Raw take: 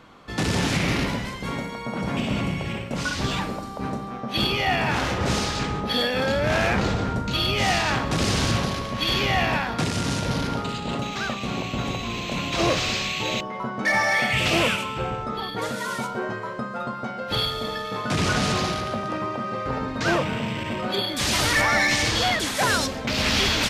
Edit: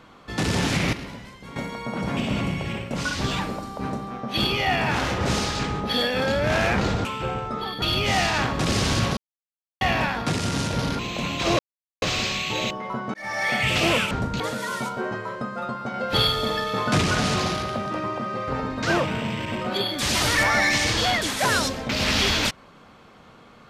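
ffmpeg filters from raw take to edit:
ffmpeg -i in.wav -filter_complex "[0:a]asplit=14[link_01][link_02][link_03][link_04][link_05][link_06][link_07][link_08][link_09][link_10][link_11][link_12][link_13][link_14];[link_01]atrim=end=0.932[link_15];[link_02]atrim=start=0.928:end=1.562,asetpts=PTS-STARTPTS,volume=-11dB[link_16];[link_03]atrim=start=1.558:end=7.052[link_17];[link_04]atrim=start=14.808:end=15.582[link_18];[link_05]atrim=start=7.338:end=8.69,asetpts=PTS-STARTPTS,afade=type=out:start_time=1.348:duration=0.004:curve=hsin[link_19];[link_06]atrim=start=8.69:end=9.33,asetpts=PTS-STARTPTS,volume=0[link_20];[link_07]atrim=start=9.33:end=10.512,asetpts=PTS-STARTPTS,afade=type=in:duration=0.004:curve=hsin[link_21];[link_08]atrim=start=12.118:end=12.72,asetpts=PTS-STARTPTS,afade=type=out:start_time=0.598:duration=0.004:curve=hsin,apad=pad_dur=0.43[link_22];[link_09]atrim=start=12.72:end=13.84,asetpts=PTS-STARTPTS,afade=type=in:duration=0.004:curve=hsin,afade=type=out:start_time=1.116:duration=0.004:curve=hsin[link_23];[link_10]atrim=start=13.84:end=14.812,asetpts=PTS-STARTPTS,afade=type=in:duration=0.44[link_24];[link_11]atrim=start=7.048:end=7.342[link_25];[link_12]atrim=start=15.578:end=17.122[link_26];[link_13]atrim=start=17.118:end=18.192,asetpts=PTS-STARTPTS,volume=4dB[link_27];[link_14]atrim=start=18.188[link_28];[link_15][link_16]acrossfade=duration=0.004:curve1=hsin:curve2=hsin[link_29];[link_29][link_17]acrossfade=duration=0.004:curve1=hsin:curve2=hsin[link_30];[link_30][link_18]acrossfade=duration=0.004:curve1=hsin:curve2=hsin[link_31];[link_19][link_20][link_21]concat=n=3:v=0:a=1[link_32];[link_31][link_32]acrossfade=duration=0.004:curve1=hsin:curve2=hsin[link_33];[link_22][link_23][link_24]concat=n=3:v=0:a=1[link_34];[link_33][link_34]acrossfade=duration=0.004:curve1=hsin:curve2=hsin[link_35];[link_35][link_25]acrossfade=duration=0.004:curve1=hsin:curve2=hsin[link_36];[link_36][link_26]acrossfade=duration=0.004:curve1=hsin:curve2=hsin[link_37];[link_37][link_27]acrossfade=duration=0.004:curve1=hsin:curve2=hsin[link_38];[link_38][link_28]acrossfade=duration=0.004:curve1=hsin:curve2=hsin" out.wav

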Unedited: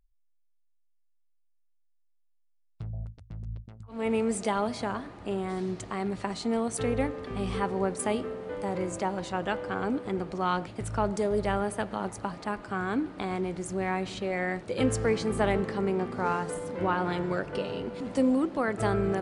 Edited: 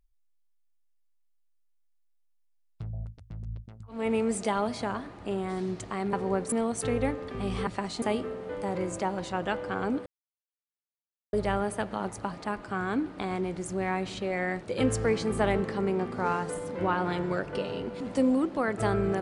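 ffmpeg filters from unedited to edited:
ffmpeg -i in.wav -filter_complex "[0:a]asplit=7[link_01][link_02][link_03][link_04][link_05][link_06][link_07];[link_01]atrim=end=6.132[link_08];[link_02]atrim=start=7.628:end=8.022[link_09];[link_03]atrim=start=6.478:end=7.632[link_10];[link_04]atrim=start=6.128:end=6.482[link_11];[link_05]atrim=start=8.018:end=10.06,asetpts=PTS-STARTPTS,afade=type=out:start_time=2.038:duration=0.004:curve=hsin[link_12];[link_06]atrim=start=10.06:end=11.33,asetpts=PTS-STARTPTS,volume=0[link_13];[link_07]atrim=start=11.33,asetpts=PTS-STARTPTS,afade=type=in:duration=0.004:curve=hsin[link_14];[link_08][link_09]acrossfade=duration=0.004:curve1=hsin:curve2=hsin[link_15];[link_15][link_10]acrossfade=duration=0.004:curve1=hsin:curve2=hsin[link_16];[link_16][link_11]acrossfade=duration=0.004:curve1=hsin:curve2=hsin[link_17];[link_12][link_13][link_14]concat=n=3:v=0:a=1[link_18];[link_17][link_18]acrossfade=duration=0.004:curve1=hsin:curve2=hsin" out.wav

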